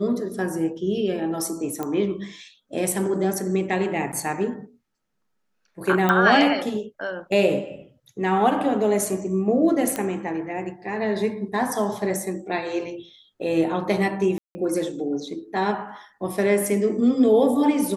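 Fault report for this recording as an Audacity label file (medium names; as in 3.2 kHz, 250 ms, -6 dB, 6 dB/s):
1.830000	1.830000	pop -15 dBFS
4.120000	4.130000	dropout 9.2 ms
6.090000	6.090000	pop -9 dBFS
9.960000	9.960000	pop -11 dBFS
14.380000	14.550000	dropout 170 ms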